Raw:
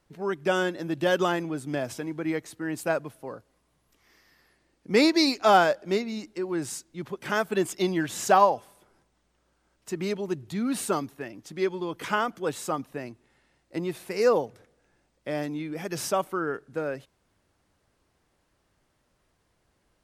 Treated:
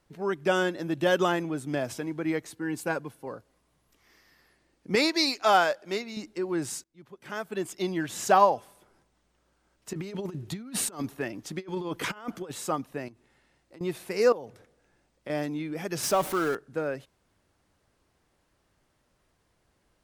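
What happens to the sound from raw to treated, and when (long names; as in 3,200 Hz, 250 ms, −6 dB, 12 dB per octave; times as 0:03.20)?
0:00.89–0:01.68: notch filter 4,700 Hz
0:02.52–0:03.27: notch comb filter 630 Hz
0:04.95–0:06.17: low-shelf EQ 440 Hz −10.5 dB
0:06.84–0:08.55: fade in, from −23 dB
0:09.93–0:12.51: compressor whose output falls as the input rises −33 dBFS, ratio −0.5
0:13.08–0:13.81: downward compressor, threshold −48 dBFS
0:14.32–0:15.30: downward compressor 8 to 1, threshold −34 dBFS
0:16.03–0:16.55: converter with a step at zero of −32 dBFS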